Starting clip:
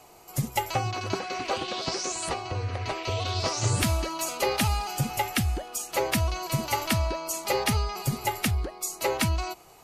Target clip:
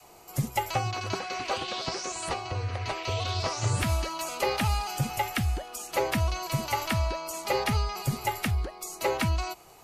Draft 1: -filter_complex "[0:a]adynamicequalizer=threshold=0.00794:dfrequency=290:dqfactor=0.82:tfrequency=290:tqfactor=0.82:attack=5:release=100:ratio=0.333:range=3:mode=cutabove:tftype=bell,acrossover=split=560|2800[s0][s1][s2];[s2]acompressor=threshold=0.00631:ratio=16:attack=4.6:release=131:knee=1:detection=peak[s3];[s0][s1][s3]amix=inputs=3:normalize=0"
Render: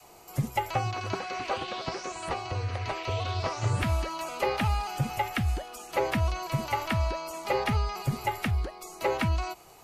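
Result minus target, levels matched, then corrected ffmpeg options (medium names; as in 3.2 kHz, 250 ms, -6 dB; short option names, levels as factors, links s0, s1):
compression: peak gain reduction +9 dB
-filter_complex "[0:a]adynamicequalizer=threshold=0.00794:dfrequency=290:dqfactor=0.82:tfrequency=290:tqfactor=0.82:attack=5:release=100:ratio=0.333:range=3:mode=cutabove:tftype=bell,acrossover=split=560|2800[s0][s1][s2];[s2]acompressor=threshold=0.0188:ratio=16:attack=4.6:release=131:knee=1:detection=peak[s3];[s0][s1][s3]amix=inputs=3:normalize=0"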